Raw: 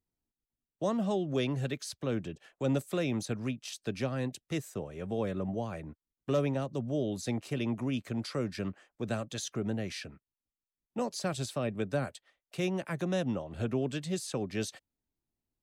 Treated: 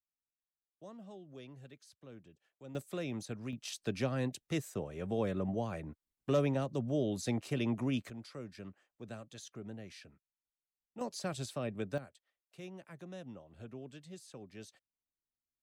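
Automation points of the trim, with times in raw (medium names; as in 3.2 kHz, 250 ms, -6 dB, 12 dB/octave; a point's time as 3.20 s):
-20 dB
from 2.75 s -7.5 dB
from 3.53 s -1 dB
from 8.10 s -12.5 dB
from 11.01 s -5 dB
from 11.98 s -16 dB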